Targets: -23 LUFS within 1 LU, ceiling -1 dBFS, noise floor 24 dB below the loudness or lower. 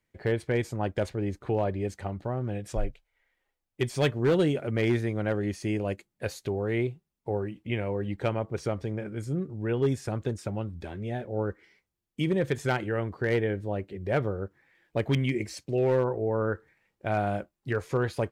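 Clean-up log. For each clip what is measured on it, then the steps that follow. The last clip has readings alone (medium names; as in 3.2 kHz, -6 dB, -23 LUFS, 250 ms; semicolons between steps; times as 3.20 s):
clipped samples 0.4%; clipping level -18.0 dBFS; loudness -30.0 LUFS; peak level -18.0 dBFS; loudness target -23.0 LUFS
-> clip repair -18 dBFS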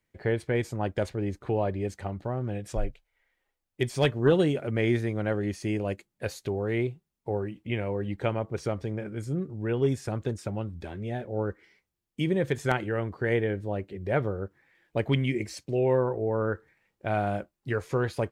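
clipped samples 0.0%; loudness -30.0 LUFS; peak level -9.0 dBFS; loudness target -23.0 LUFS
-> trim +7 dB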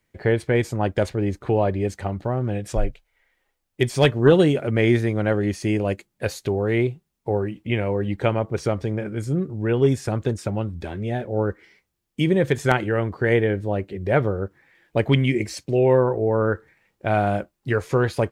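loudness -23.0 LUFS; peak level -2.0 dBFS; noise floor -76 dBFS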